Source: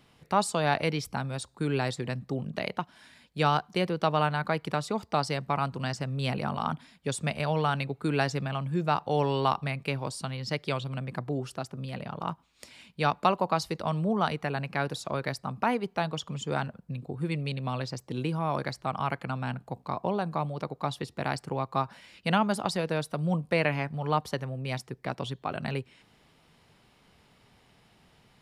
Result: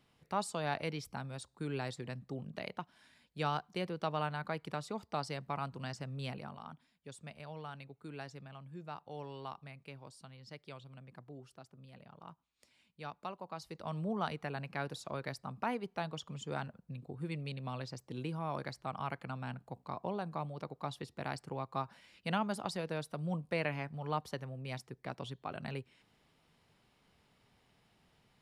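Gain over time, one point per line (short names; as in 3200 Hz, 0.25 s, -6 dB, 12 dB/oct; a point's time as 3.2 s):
6.22 s -10 dB
6.64 s -19 dB
13.47 s -19 dB
13.99 s -9 dB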